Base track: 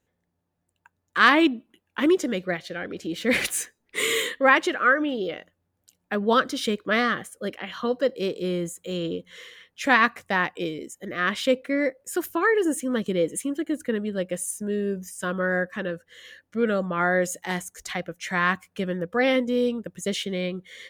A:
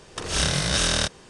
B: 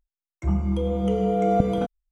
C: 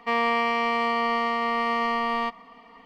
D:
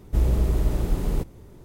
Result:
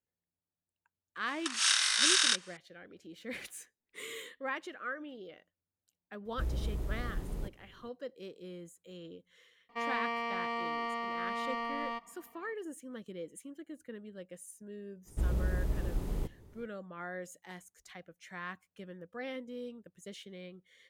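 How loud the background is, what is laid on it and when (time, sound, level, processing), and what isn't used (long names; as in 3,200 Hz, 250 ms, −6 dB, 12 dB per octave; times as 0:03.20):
base track −19.5 dB
0:01.28: mix in A −2 dB + high-pass filter 1,200 Hz 24 dB per octave
0:06.25: mix in D −14 dB
0:09.69: mix in C −11.5 dB
0:15.04: mix in D −10.5 dB, fades 0.05 s
not used: B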